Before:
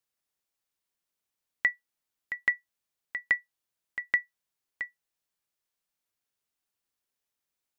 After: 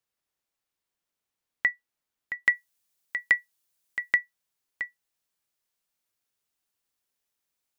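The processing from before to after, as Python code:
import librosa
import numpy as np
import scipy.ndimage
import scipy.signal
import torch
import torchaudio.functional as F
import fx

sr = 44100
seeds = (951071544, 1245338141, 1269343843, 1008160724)

y = fx.high_shelf(x, sr, hz=4000.0, db=fx.steps((0.0, -4.5), (2.45, 9.5), (4.13, 2.0)))
y = y * 10.0 ** (2.0 / 20.0)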